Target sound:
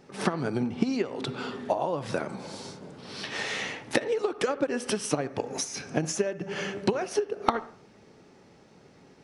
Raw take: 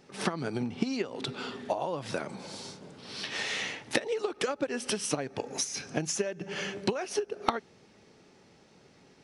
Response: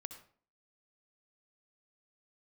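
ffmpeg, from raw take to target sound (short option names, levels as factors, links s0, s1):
-filter_complex "[0:a]asplit=2[s0][s1];[1:a]atrim=start_sample=2205,lowpass=2200[s2];[s1][s2]afir=irnorm=-1:irlink=0,volume=1[s3];[s0][s3]amix=inputs=2:normalize=0"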